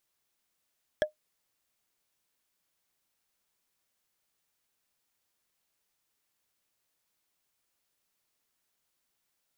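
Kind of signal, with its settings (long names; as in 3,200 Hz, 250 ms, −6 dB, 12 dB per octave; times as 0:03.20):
struck wood, lowest mode 611 Hz, decay 0.12 s, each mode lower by 5 dB, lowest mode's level −18 dB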